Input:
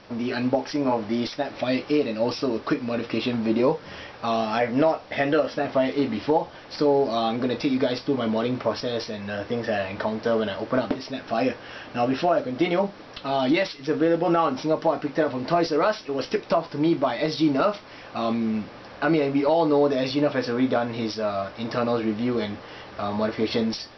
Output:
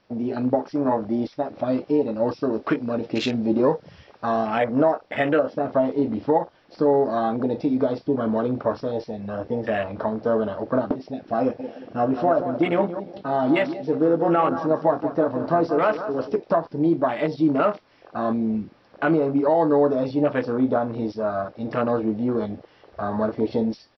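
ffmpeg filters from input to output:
-filter_complex "[0:a]asettb=1/sr,asplit=3[a][b][c];[a]atrim=end=2.534[d];[b]atrim=start=2.53:end=4.47,asetpts=PTS-STARTPTS,afade=t=in:d=0.004:c=qsin,afade=t=out:st=1.936:d=0.004:c=qsin,highshelf=f=3.5k:g=6[e];[c]atrim=start=4.466[f];[d][e]acrossfade=d=0.004:c1=hsin:c2=qsin[g];[g][f]acrossfade=d=0.004:c1=qsin:c2=hsin,asplit=3[h][i][j];[h]afade=t=out:st=11.58:d=0.02[k];[i]aecho=1:1:179|358|537|716:0.316|0.117|0.0433|0.016,afade=t=in:st=11.58:d=0.02,afade=t=out:st=16.35:d=0.02[l];[j]afade=t=in:st=16.35:d=0.02[m];[k][l][m]amix=inputs=3:normalize=0,afwtdn=0.0316,volume=1.5dB"

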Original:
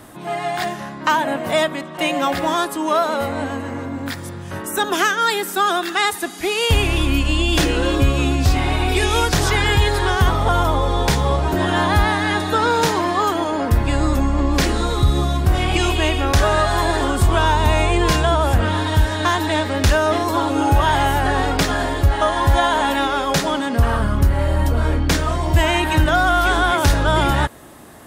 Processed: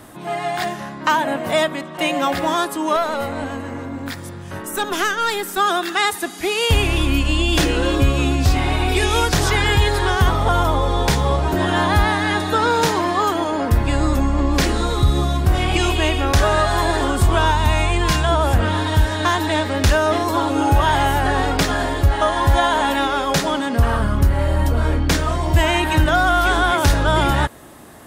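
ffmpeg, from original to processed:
-filter_complex "[0:a]asettb=1/sr,asplit=3[a][b][c];[a]atrim=end=2.964[d];[b]atrim=start=2.96:end=5.58,asetpts=PTS-STARTPTS,afade=t=in:d=0.004:c=qsin,afade=t=out:st=2.616:d=0.004:c=qsin,aeval=exprs='(tanh(3.98*val(0)+0.45)-tanh(0.45))/3.98':c=same[e];[c]atrim=start=5.576[f];[d][e]acrossfade=d=0.004:c1=hsin:c2=qsin[g];[g][f]acrossfade=d=0.004:c1=qsin:c2=hsin,asettb=1/sr,asplit=3[h][i][j];[h]atrim=end=17.514[k];[i]atrim=start=17.51:end=18.29,asetpts=PTS-STARTPTS,afade=t=in:d=0.004:c=qsin,afade=t=out:st=0.776:d=0.004:c=qsin,equalizer=f=460:w=1.5:g=-8[l];[j]atrim=start=18.286[m];[k][l]acrossfade=d=0.004:c1=hsin:c2=qsin[n];[n][m]acrossfade=d=0.004:c1=qsin:c2=hsin"

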